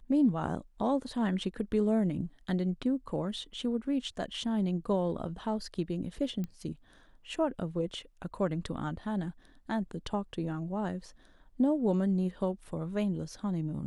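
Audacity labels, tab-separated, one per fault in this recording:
6.440000	6.440000	pop -25 dBFS

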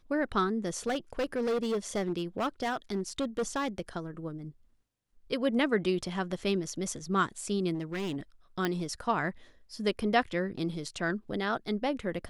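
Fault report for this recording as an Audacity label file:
0.860000	3.800000	clipped -26 dBFS
7.740000	8.170000	clipped -30.5 dBFS
8.650000	8.650000	pop -15 dBFS

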